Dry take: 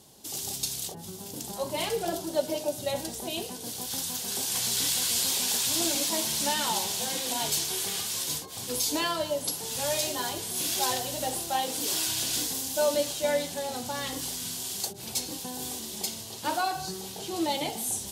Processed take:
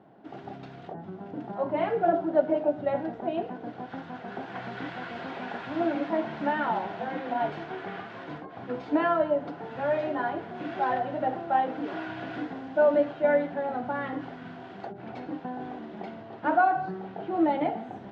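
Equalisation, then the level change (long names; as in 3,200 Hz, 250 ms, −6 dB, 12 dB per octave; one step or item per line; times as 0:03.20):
loudspeaker in its box 130–2,000 Hz, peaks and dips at 130 Hz +3 dB, 190 Hz +4 dB, 300 Hz +8 dB, 690 Hz +10 dB, 1,800 Hz +3 dB
parametric band 1,400 Hz +8 dB 0.26 octaves
0.0 dB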